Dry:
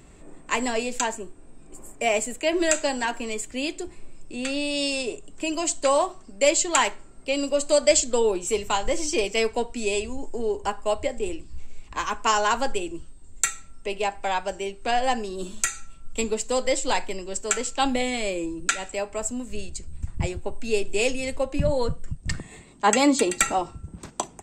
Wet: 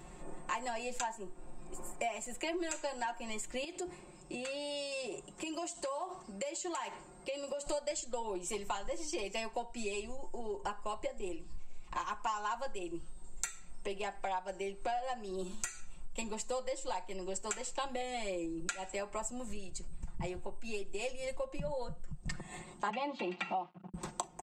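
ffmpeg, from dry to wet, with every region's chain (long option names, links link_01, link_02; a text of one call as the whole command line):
ffmpeg -i in.wav -filter_complex "[0:a]asettb=1/sr,asplit=3[link_01][link_02][link_03];[link_01]atrim=end=3.644[link_04];[link_02]atrim=start=3.64:end=7.67,asetpts=PTS-STARTPTS,afade=type=in:duration=0.004:curve=qsin,afade=type=out:start_time=4.026:duration=0.004:curve=qsin,highpass=57,acompressor=threshold=-34dB:ratio=6:attack=3.2:release=140:knee=1:detection=peak[link_05];[link_03]atrim=start=7.666[link_06];[link_04][link_05]acrossfade=duration=0.004:curve1=hsin:curve2=qsin[link_07];[link_07][link_06]acrossfade=duration=0.004:curve1=qsin:curve2=hsin,asettb=1/sr,asplit=3[link_08][link_09][link_10];[link_08]atrim=end=22.904[link_11];[link_09]atrim=start=22.9:end=23.94,asetpts=PTS-STARTPTS,afade=type=in:duration=0.004:curve=qsin,afade=type=out:start_time=1.036:duration=0.004:curve=qsin,bandreject=frequency=1500:width=11,acrusher=bits=5:mix=0:aa=0.5,highpass=frequency=160:width=0.5412,highpass=frequency=160:width=1.3066,equalizer=frequency=190:width_type=q:width=4:gain=8,equalizer=frequency=490:width_type=q:width=4:gain=-5,equalizer=frequency=780:width_type=q:width=4:gain=4,equalizer=frequency=1700:width_type=q:width=4:gain=-6,equalizer=frequency=2700:width_type=q:width=4:gain=6,lowpass=frequency=3800:width=0.5412,lowpass=frequency=3800:width=1.3066[link_12];[link_10]atrim=start=23.936[link_13];[link_11][link_12]acrossfade=duration=0.004:curve1=hsin:curve2=qsin[link_14];[link_14][link_13]acrossfade=duration=0.004:curve1=qsin:curve2=hsin,equalizer=frequency=860:width_type=o:width=0.99:gain=8,aecho=1:1:5.6:0.84,acompressor=threshold=-31dB:ratio=6,volume=-4.5dB" out.wav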